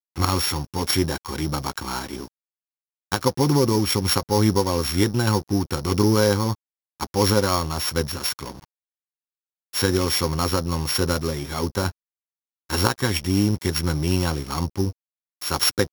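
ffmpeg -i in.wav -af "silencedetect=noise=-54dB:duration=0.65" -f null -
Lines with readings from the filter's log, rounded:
silence_start: 2.28
silence_end: 3.12 | silence_duration: 0.84
silence_start: 8.65
silence_end: 9.73 | silence_duration: 1.08
silence_start: 11.92
silence_end: 12.69 | silence_duration: 0.78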